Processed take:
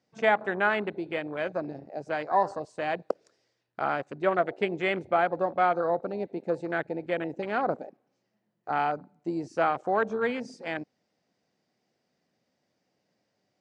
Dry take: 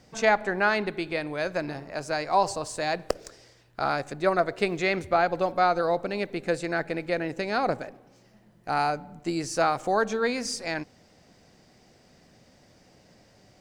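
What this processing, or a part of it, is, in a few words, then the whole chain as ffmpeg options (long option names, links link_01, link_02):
over-cleaned archive recording: -af "highpass=160,lowpass=6700,afwtdn=0.0251,volume=-1.5dB"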